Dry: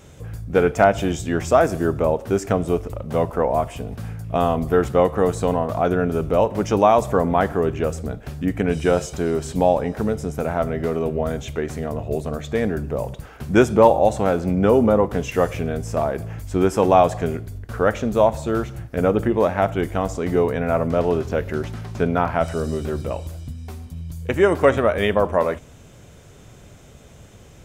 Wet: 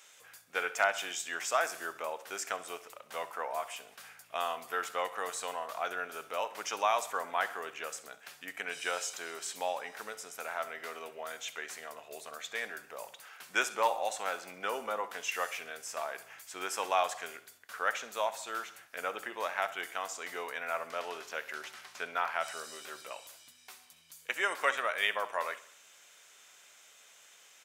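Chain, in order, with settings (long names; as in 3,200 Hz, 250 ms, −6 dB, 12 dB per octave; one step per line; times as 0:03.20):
high-pass filter 1,500 Hz 12 dB per octave
repeating echo 66 ms, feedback 52%, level −17.5 dB
level −2.5 dB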